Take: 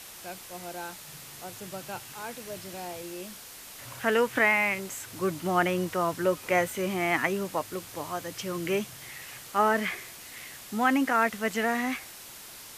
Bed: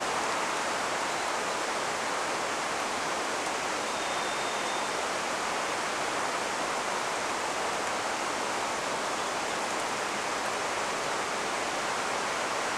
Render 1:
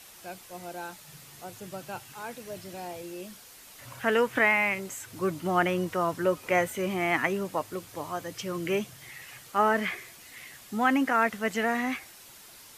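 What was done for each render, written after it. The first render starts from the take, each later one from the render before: noise reduction 6 dB, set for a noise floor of -46 dBFS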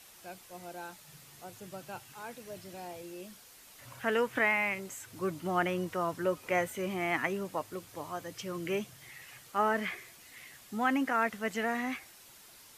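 trim -5 dB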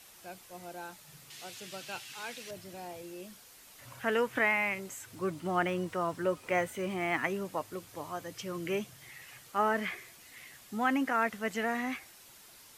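1.30–2.51 s: frequency weighting D; 5.15–7.23 s: decimation joined by straight lines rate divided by 2×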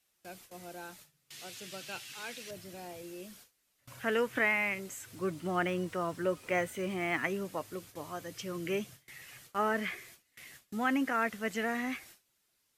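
gate with hold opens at -41 dBFS; peaking EQ 890 Hz -4.5 dB 0.82 oct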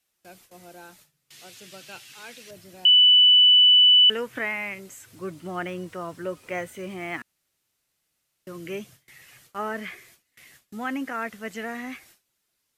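2.85–4.10 s: bleep 2.98 kHz -11.5 dBFS; 7.22–8.47 s: room tone

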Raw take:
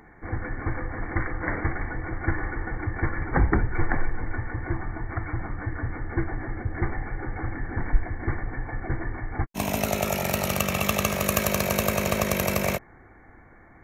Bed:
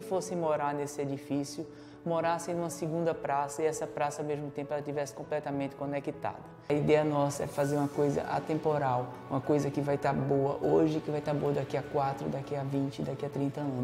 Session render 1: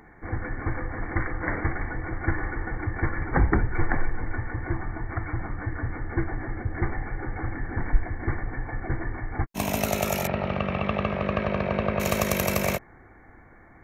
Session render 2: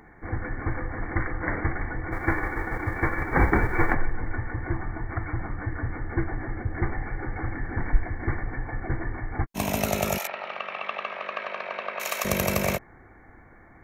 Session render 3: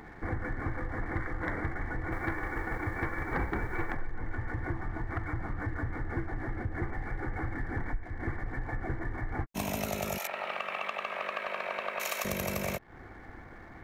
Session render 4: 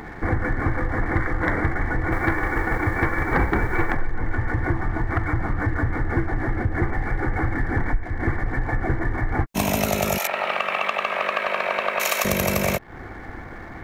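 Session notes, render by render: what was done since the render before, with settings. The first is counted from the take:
10.27–12.00 s: Gaussian low-pass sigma 3.2 samples
2.11–3.93 s: formants flattened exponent 0.6; 7.00–8.57 s: resonant low-pass 5.1 kHz, resonance Q 5; 10.18–12.25 s: high-pass 890 Hz
compression 4:1, threshold -35 dBFS, peak gain reduction 19 dB; waveshaping leveller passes 1
trim +11.5 dB

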